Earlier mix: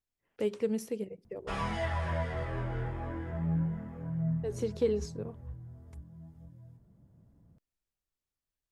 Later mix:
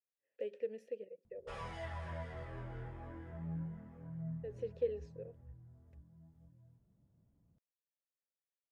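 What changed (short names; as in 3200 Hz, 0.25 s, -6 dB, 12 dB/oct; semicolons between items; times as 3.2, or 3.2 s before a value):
speech: add vowel filter e; background -11.0 dB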